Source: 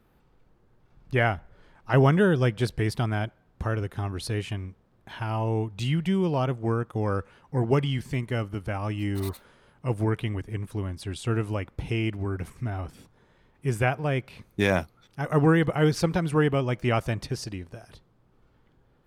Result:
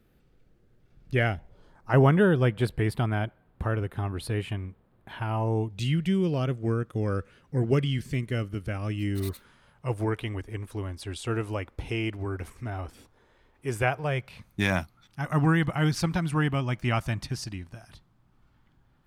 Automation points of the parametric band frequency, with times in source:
parametric band −12 dB 0.74 octaves
0:01.28 960 Hz
0:02.15 5,900 Hz
0:05.28 5,900 Hz
0:05.82 880 Hz
0:09.30 880 Hz
0:10.03 160 Hz
0:13.70 160 Hz
0:14.61 460 Hz

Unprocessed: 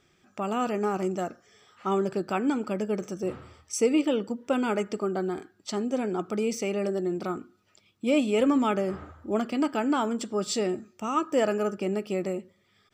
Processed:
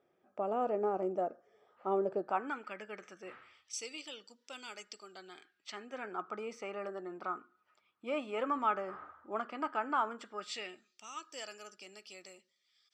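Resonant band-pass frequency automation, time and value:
resonant band-pass, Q 1.9
0:02.16 580 Hz
0:02.63 1,900 Hz
0:03.37 1,900 Hz
0:03.92 4,800 Hz
0:05.01 4,800 Hz
0:06.25 1,200 Hz
0:10.10 1,200 Hz
0:11.08 4,900 Hz

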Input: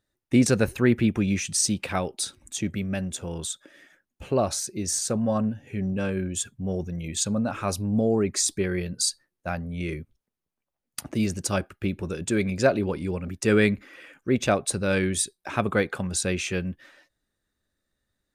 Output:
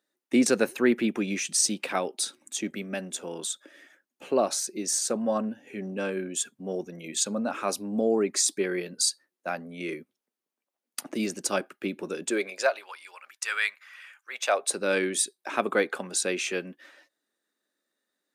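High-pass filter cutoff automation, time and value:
high-pass filter 24 dB per octave
0:12.21 240 Hz
0:12.90 1,000 Hz
0:14.29 1,000 Hz
0:14.80 260 Hz

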